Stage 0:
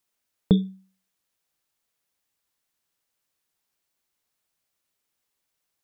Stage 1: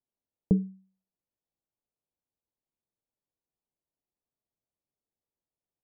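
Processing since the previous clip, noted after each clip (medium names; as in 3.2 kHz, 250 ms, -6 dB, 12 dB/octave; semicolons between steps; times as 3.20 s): Bessel low-pass 590 Hz, order 8; trim -4.5 dB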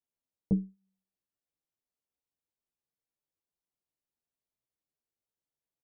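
endless flanger 9.7 ms +1.2 Hz; trim -1 dB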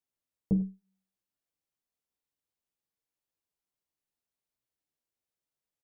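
multi-tap echo 42/74/84/96 ms -13/-19.5/-18/-17.5 dB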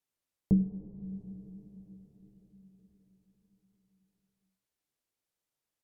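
low-pass that closes with the level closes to 400 Hz, closed at -36.5 dBFS; on a send at -10 dB: reverberation RT60 5.5 s, pre-delay 58 ms; on the sum: trim +2.5 dB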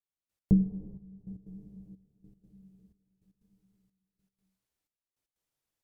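bass shelf 110 Hz +8 dB; trance gate "...x.xxxxx" 154 bpm -12 dB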